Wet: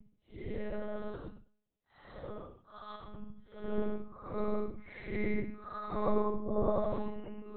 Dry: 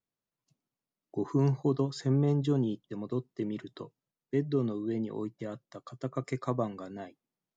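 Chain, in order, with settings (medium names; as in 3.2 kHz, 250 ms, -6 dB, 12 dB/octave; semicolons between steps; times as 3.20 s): Paulstretch 5.2×, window 0.10 s, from 5.32 s; monotone LPC vocoder at 8 kHz 210 Hz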